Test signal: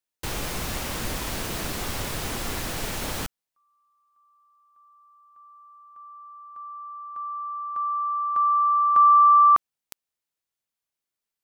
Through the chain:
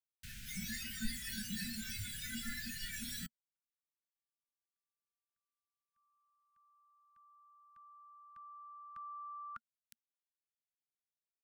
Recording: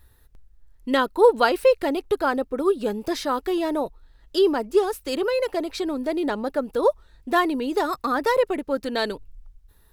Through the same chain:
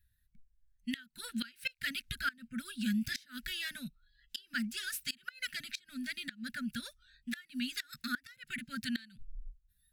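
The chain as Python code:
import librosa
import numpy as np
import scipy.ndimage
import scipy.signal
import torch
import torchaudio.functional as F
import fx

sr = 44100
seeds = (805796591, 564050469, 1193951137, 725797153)

y = fx.noise_reduce_blind(x, sr, reduce_db=19)
y = scipy.signal.sosfilt(scipy.signal.ellip(4, 1.0, 40, [230.0, 1500.0], 'bandstop', fs=sr, output='sos'), y)
y = fx.gate_flip(y, sr, shuts_db=-24.0, range_db=-26)
y = y * librosa.db_to_amplitude(1.0)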